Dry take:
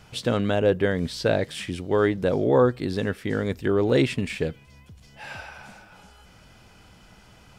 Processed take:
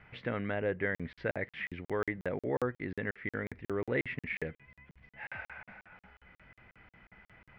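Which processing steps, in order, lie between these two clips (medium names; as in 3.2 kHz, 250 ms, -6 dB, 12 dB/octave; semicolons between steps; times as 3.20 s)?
in parallel at +0.5 dB: compression, threshold -29 dBFS, peak gain reduction 14.5 dB; on the sum: four-pole ladder low-pass 2.2 kHz, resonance 70%; crackling interface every 0.18 s, samples 2048, zero, from 0.95 s; trim -3.5 dB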